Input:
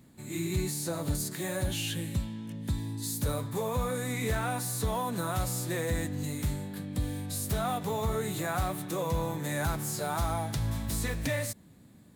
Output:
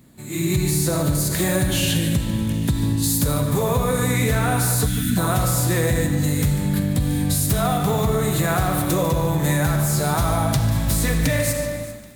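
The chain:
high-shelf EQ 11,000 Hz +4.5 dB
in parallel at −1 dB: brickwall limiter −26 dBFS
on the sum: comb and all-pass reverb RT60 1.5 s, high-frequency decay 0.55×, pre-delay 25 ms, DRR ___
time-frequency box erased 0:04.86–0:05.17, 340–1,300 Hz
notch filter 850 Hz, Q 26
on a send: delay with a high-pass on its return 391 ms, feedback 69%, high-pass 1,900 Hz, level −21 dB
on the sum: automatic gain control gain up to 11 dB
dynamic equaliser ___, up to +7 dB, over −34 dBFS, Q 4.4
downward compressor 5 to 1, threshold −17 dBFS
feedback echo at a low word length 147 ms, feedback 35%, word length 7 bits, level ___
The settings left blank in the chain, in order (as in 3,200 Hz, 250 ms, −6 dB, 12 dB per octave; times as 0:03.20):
5 dB, 140 Hz, −13 dB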